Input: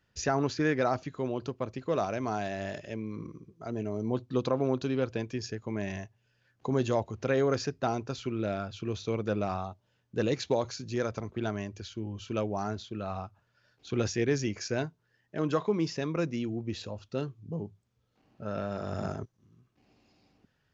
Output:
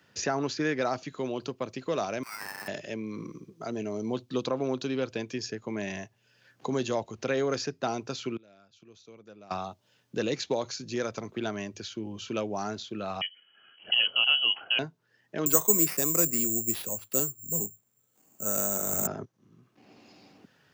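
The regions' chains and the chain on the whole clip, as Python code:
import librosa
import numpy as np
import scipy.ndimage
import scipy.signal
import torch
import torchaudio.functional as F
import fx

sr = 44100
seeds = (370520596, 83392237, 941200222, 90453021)

y = fx.chain(x, sr, fx.steep_highpass(hz=1300.0, slope=36),
    fx.sample_hold(seeds[0], rate_hz=3500.0, jitter_pct=0), at=(2.23, 2.68))
y = fx.chain(y, sr, fx.high_shelf(hz=6500.0, db=10.0),
    fx.gate_flip(shuts_db=-33.0, range_db=-28), at=(8.36, 9.51))
y = fx.chain(y, sr, fx.peak_eq(hz=180.0, db=13.5, octaves=0.86),
    fx.freq_invert(carrier_hz=3100), at=(13.21, 14.79))
y = fx.chain(y, sr, fx.resample_bad(factor=6, down='none', up='zero_stuff'),
    fx.band_widen(depth_pct=40), at=(15.46, 19.07))
y = scipy.signal.sosfilt(scipy.signal.butter(2, 160.0, 'highpass', fs=sr, output='sos'), y)
y = fx.band_squash(y, sr, depth_pct=40)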